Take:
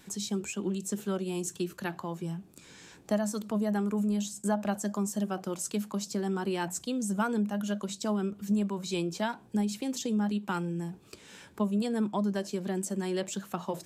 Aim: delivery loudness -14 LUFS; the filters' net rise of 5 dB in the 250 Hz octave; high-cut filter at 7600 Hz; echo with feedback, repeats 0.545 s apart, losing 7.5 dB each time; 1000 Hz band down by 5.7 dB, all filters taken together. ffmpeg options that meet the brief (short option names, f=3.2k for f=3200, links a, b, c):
-af "lowpass=7.6k,equalizer=f=250:t=o:g=7,equalizer=f=1k:t=o:g=-8,aecho=1:1:545|1090|1635|2180|2725:0.422|0.177|0.0744|0.0312|0.0131,volume=13.5dB"